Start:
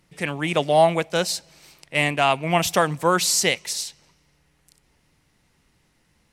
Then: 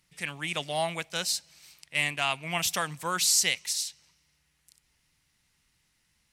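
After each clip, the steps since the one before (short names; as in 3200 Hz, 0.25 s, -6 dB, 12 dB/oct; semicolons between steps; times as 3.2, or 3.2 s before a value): passive tone stack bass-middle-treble 5-5-5; gain +4 dB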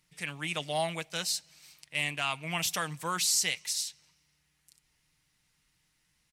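comb 6.5 ms, depth 32%; in parallel at -2.5 dB: limiter -19.5 dBFS, peak gain reduction 9 dB; on the sum: hard clip -9.5 dBFS, distortion -44 dB; gain -7 dB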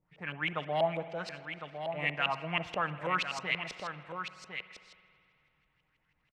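LFO low-pass saw up 6.2 Hz 490–2900 Hz; echo 1.055 s -8 dB; spring tank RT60 2.5 s, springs 54 ms, chirp 70 ms, DRR 13.5 dB; gain -1.5 dB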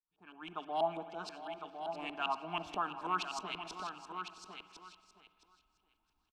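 opening faded in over 0.82 s; fixed phaser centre 530 Hz, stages 6; feedback echo 0.666 s, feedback 18%, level -13 dB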